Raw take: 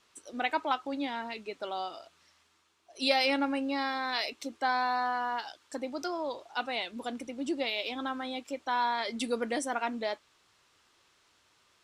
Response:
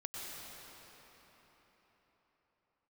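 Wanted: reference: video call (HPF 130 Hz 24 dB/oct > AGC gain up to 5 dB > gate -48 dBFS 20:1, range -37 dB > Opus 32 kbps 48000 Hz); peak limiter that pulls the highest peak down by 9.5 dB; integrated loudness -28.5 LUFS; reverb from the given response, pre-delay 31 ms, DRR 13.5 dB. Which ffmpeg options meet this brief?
-filter_complex "[0:a]alimiter=limit=-22dB:level=0:latency=1,asplit=2[a][b];[1:a]atrim=start_sample=2205,adelay=31[c];[b][c]afir=irnorm=-1:irlink=0,volume=-14dB[d];[a][d]amix=inputs=2:normalize=0,highpass=f=130:w=0.5412,highpass=f=130:w=1.3066,dynaudnorm=m=5dB,agate=range=-37dB:threshold=-48dB:ratio=20,volume=6.5dB" -ar 48000 -c:a libopus -b:a 32k

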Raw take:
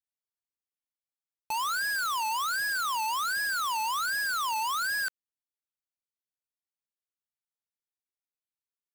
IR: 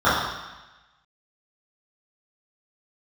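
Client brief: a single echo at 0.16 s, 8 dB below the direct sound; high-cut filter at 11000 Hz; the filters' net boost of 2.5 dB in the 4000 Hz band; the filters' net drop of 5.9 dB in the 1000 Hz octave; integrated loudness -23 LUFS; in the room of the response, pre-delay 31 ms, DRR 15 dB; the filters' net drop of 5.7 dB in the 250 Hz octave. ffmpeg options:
-filter_complex "[0:a]lowpass=11k,equalizer=f=250:t=o:g=-7.5,equalizer=f=1k:t=o:g=-7,equalizer=f=4k:t=o:g=3.5,aecho=1:1:160:0.398,asplit=2[a][b];[1:a]atrim=start_sample=2205,adelay=31[c];[b][c]afir=irnorm=-1:irlink=0,volume=-39dB[d];[a][d]amix=inputs=2:normalize=0,volume=7dB"

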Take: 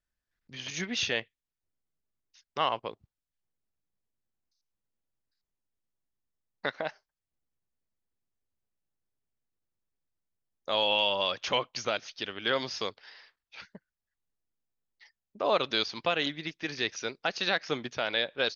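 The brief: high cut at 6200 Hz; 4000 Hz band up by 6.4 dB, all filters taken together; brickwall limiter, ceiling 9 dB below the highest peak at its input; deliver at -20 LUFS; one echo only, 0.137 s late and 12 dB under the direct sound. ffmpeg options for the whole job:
-af "lowpass=6.2k,equalizer=f=4k:t=o:g=8.5,alimiter=limit=-17.5dB:level=0:latency=1,aecho=1:1:137:0.251,volume=10.5dB"

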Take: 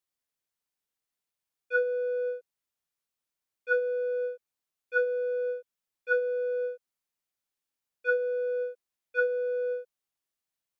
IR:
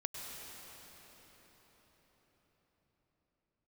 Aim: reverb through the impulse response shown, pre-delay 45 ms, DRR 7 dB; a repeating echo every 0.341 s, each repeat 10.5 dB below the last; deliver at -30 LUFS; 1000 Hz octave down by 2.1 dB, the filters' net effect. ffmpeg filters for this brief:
-filter_complex "[0:a]equalizer=f=1k:t=o:g=-4.5,aecho=1:1:341|682|1023:0.299|0.0896|0.0269,asplit=2[a][b];[1:a]atrim=start_sample=2205,adelay=45[c];[b][c]afir=irnorm=-1:irlink=0,volume=-7.5dB[d];[a][d]amix=inputs=2:normalize=0,volume=2.5dB"

